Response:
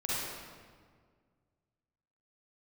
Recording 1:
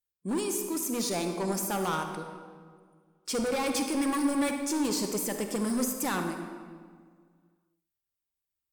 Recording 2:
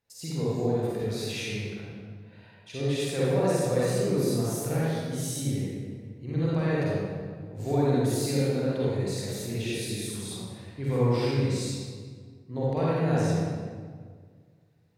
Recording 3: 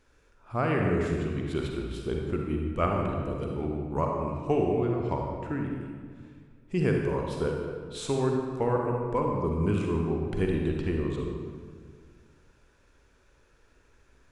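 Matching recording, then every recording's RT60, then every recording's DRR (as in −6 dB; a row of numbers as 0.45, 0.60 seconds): 2; 1.8, 1.8, 1.8 seconds; 5.0, −8.5, 0.5 decibels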